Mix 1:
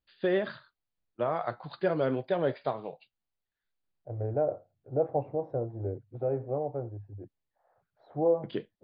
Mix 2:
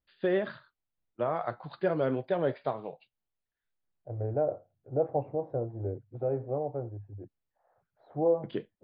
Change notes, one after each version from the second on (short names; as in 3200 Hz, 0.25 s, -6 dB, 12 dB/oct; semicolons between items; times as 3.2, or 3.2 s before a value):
master: add air absorption 150 m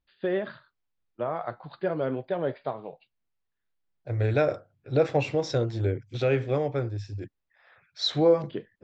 second voice: remove ladder low-pass 910 Hz, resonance 45%